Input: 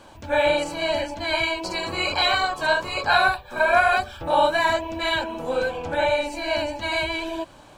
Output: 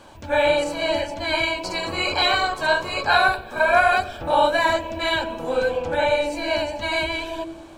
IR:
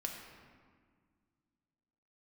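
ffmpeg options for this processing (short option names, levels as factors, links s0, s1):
-filter_complex "[0:a]asplit=2[s0][s1];[s1]lowshelf=f=660:t=q:w=3:g=9.5[s2];[1:a]atrim=start_sample=2205,adelay=93[s3];[s2][s3]afir=irnorm=-1:irlink=0,volume=0.126[s4];[s0][s4]amix=inputs=2:normalize=0,volume=1.12"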